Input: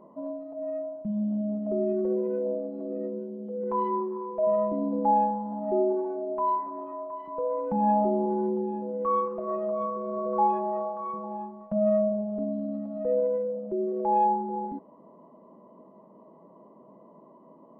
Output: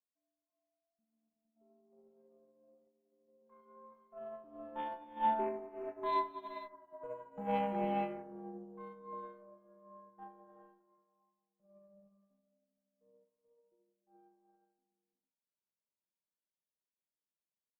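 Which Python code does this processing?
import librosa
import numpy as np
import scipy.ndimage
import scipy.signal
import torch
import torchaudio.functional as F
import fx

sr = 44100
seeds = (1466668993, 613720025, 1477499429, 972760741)

y = fx.doppler_pass(x, sr, speed_mps=21, closest_m=24.0, pass_at_s=6.5)
y = fx.cheby_harmonics(y, sr, harmonics=(2, 4), levels_db=(-12, -15), full_scale_db=-17.0)
y = fx.bass_treble(y, sr, bass_db=-1, treble_db=15)
y = fx.rev_gated(y, sr, seeds[0], gate_ms=490, shape='rising', drr_db=-0.5)
y = fx.upward_expand(y, sr, threshold_db=-45.0, expansion=2.5)
y = F.gain(torch.from_numpy(y), -6.0).numpy()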